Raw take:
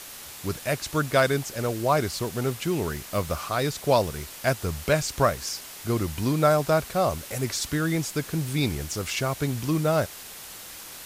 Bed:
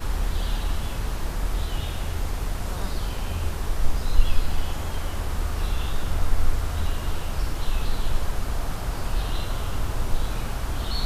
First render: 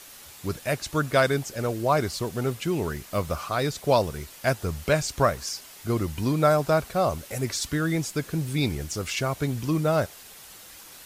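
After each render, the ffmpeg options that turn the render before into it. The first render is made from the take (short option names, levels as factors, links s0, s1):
-af "afftdn=nr=6:nf=-42"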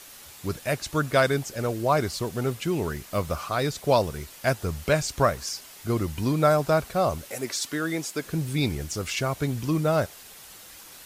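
-filter_complex "[0:a]asettb=1/sr,asplit=3[s0][s1][s2];[s0]atrim=end=7.304[s3];[s1]atrim=start=7.3:end=8.25,asetpts=PTS-STARTPTS,afade=t=in:d=0.004:c=qsin,afade=t=out:st=0.946:d=0.004:c=qsin,highpass=260[s4];[s2]atrim=start=8.246[s5];[s3][s4]acrossfade=d=0.004:c1=hsin:c2=qsin[s6];[s6][s5]acrossfade=d=0.004:c1=qsin:c2=hsin"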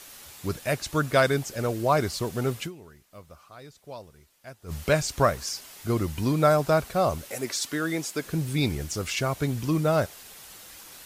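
-filter_complex "[0:a]asplit=3[s0][s1][s2];[s0]atrim=end=2.92,asetpts=PTS-STARTPTS,afade=t=out:st=2.65:d=0.27:c=exp:silence=0.1[s3];[s1]atrim=start=2.92:end=4.45,asetpts=PTS-STARTPTS,volume=0.1[s4];[s2]atrim=start=4.45,asetpts=PTS-STARTPTS,afade=t=in:d=0.27:c=exp:silence=0.1[s5];[s3][s4][s5]concat=n=3:v=0:a=1"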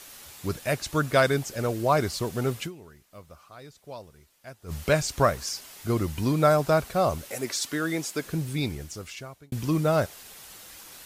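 -filter_complex "[0:a]asplit=2[s0][s1];[s0]atrim=end=9.52,asetpts=PTS-STARTPTS,afade=t=out:st=8.19:d=1.33[s2];[s1]atrim=start=9.52,asetpts=PTS-STARTPTS,afade=t=in:d=0.004:c=hsin[s3];[s2][s3]concat=n=2:v=0:a=1"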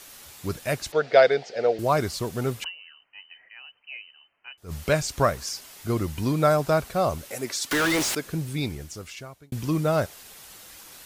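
-filter_complex "[0:a]asettb=1/sr,asplit=3[s0][s1][s2];[s0]atrim=end=0.924[s3];[s1]atrim=start=0.92:end=1.79,asetpts=PTS-STARTPTS,afade=t=in:d=0.004:c=qsin,afade=t=out:st=0.866:d=0.004:c=qsin,highpass=290,equalizer=f=290:t=q:w=4:g=-9,equalizer=f=470:t=q:w=4:g=10,equalizer=f=720:t=q:w=4:g=10,equalizer=f=1100:t=q:w=4:g=-10,equalizer=f=2000:t=q:w=4:g=4,equalizer=f=4600:t=q:w=4:g=4,lowpass=f=4800:w=0.5412,lowpass=f=4800:w=1.3066[s4];[s2]atrim=start=1.786[s5];[s3][s4]acrossfade=d=0.004:c1=hsin:c2=qsin[s6];[s6][s5]acrossfade=d=0.004:c1=qsin:c2=hsin,asettb=1/sr,asplit=3[s7][s8][s9];[s7]atrim=end=2.644[s10];[s8]atrim=start=2.64:end=4.58,asetpts=PTS-STARTPTS,afade=t=in:d=0.004:c=qsin,afade=t=out:st=1.936:d=0.004:c=qsin,lowpass=f=2600:t=q:w=0.5098,lowpass=f=2600:t=q:w=0.6013,lowpass=f=2600:t=q:w=0.9,lowpass=f=2600:t=q:w=2.563,afreqshift=-3100[s11];[s9]atrim=start=4.576[s12];[s10][s11]acrossfade=d=0.004:c1=hsin:c2=qsin[s13];[s13][s12]acrossfade=d=0.004:c1=qsin:c2=hsin,asettb=1/sr,asplit=3[s14][s15][s16];[s14]atrim=end=7.714[s17];[s15]atrim=start=7.71:end=8.15,asetpts=PTS-STARTPTS,afade=t=in:d=0.004:c=qsin,afade=t=out:st=0.436:d=0.004:c=qsin,asplit=2[s18][s19];[s19]highpass=f=720:p=1,volume=100,asoftclip=type=tanh:threshold=0.15[s20];[s18][s20]amix=inputs=2:normalize=0,lowpass=f=5000:p=1,volume=0.501[s21];[s16]atrim=start=8.146[s22];[s17][s21]acrossfade=d=0.004:c1=hsin:c2=qsin[s23];[s23][s22]acrossfade=d=0.004:c1=qsin:c2=hsin"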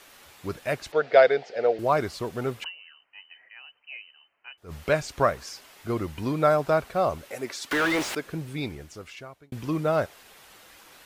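-af "bass=f=250:g=-6,treble=f=4000:g=-10"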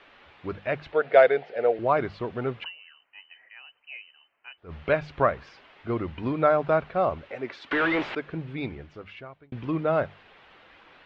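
-af "lowpass=f=3200:w=0.5412,lowpass=f=3200:w=1.3066,bandreject=f=50:t=h:w=6,bandreject=f=100:t=h:w=6,bandreject=f=150:t=h:w=6,bandreject=f=200:t=h:w=6"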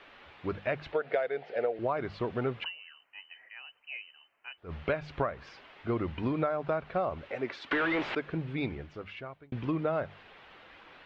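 -af "acompressor=threshold=0.0501:ratio=20"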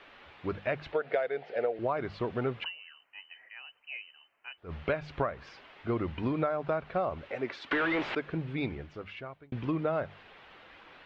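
-af anull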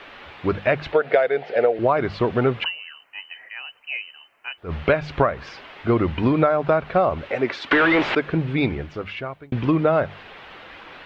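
-af "volume=3.98"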